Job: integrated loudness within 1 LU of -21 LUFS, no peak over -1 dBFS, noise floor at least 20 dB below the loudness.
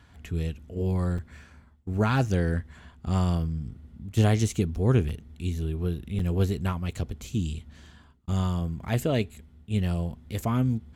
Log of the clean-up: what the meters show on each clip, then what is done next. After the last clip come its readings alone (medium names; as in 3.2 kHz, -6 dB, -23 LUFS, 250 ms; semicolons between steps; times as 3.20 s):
dropouts 3; longest dropout 4.4 ms; loudness -28.0 LUFS; peak level -9.5 dBFS; loudness target -21.0 LUFS
-> interpolate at 1.18/5.09/6.19 s, 4.4 ms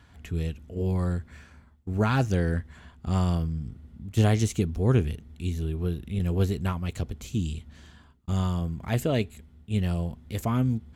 dropouts 0; loudness -28.0 LUFS; peak level -9.5 dBFS; loudness target -21.0 LUFS
-> trim +7 dB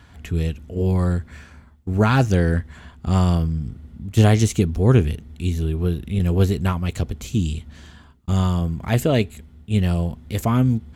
loudness -21.0 LUFS; peak level -2.5 dBFS; noise floor -48 dBFS